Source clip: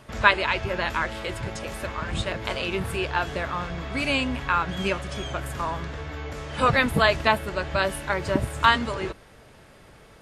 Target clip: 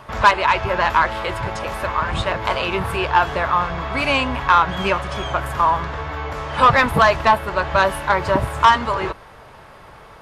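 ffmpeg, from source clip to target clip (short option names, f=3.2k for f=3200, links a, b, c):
-filter_complex "[0:a]equalizer=f=250:t=o:w=1:g=-4,equalizer=f=1k:t=o:w=1:g=10,equalizer=f=8k:t=o:w=1:g=-6,asplit=2[a][b];[b]alimiter=limit=-4.5dB:level=0:latency=1:release=386,volume=2.5dB[c];[a][c]amix=inputs=2:normalize=0,asoftclip=type=tanh:threshold=-2.5dB,volume=-2dB"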